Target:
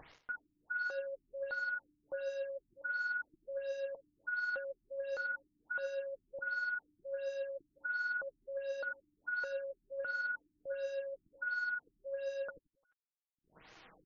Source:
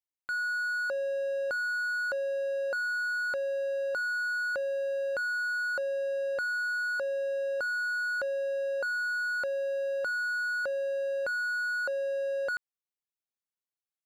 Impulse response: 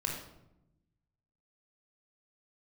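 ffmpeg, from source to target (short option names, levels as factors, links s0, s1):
-filter_complex "[0:a]highshelf=f=6400:g=10.5,aecho=1:1:6.3:0.43,acrossover=split=2900[s0][s1];[s0]acompressor=mode=upward:threshold=0.00794:ratio=2.5[s2];[s2][s1]amix=inputs=2:normalize=0,alimiter=level_in=2.66:limit=0.0631:level=0:latency=1:release=10,volume=0.376,areverse,acompressor=threshold=0.00447:ratio=8,areverse,acrusher=bits=8:mode=log:mix=0:aa=0.000001,aphaser=in_gain=1:out_gain=1:delay=4.8:decay=0.44:speed=1.4:type=triangular,acrusher=bits=10:mix=0:aa=0.000001,aecho=1:1:87|174|261|348:0.178|0.0694|0.027|0.0105,afftfilt=real='re*lt(b*sr/1024,320*pow(7100/320,0.5+0.5*sin(2*PI*1.4*pts/sr)))':imag='im*lt(b*sr/1024,320*pow(7100/320,0.5+0.5*sin(2*PI*1.4*pts/sr)))':win_size=1024:overlap=0.75,volume=2.66"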